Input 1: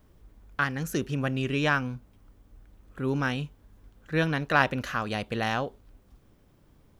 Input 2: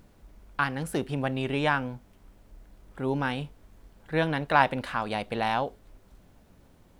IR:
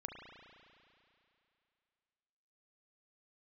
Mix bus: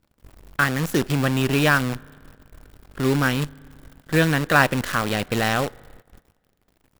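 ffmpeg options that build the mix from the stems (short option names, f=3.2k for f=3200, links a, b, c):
-filter_complex "[0:a]acontrast=75,acrusher=bits=5:dc=4:mix=0:aa=0.000001,volume=-0.5dB,asplit=2[a][b];[b]volume=-22dB[c];[1:a]acompressor=threshold=-45dB:ratio=1.5,adelay=0.6,volume=-6.5dB,asplit=2[d][e];[e]volume=-4dB[f];[2:a]atrim=start_sample=2205[g];[c][f]amix=inputs=2:normalize=0[h];[h][g]afir=irnorm=-1:irlink=0[i];[a][d][i]amix=inputs=3:normalize=0,agate=range=-12dB:threshold=-46dB:ratio=16:detection=peak,bandreject=f=6.2k:w=19"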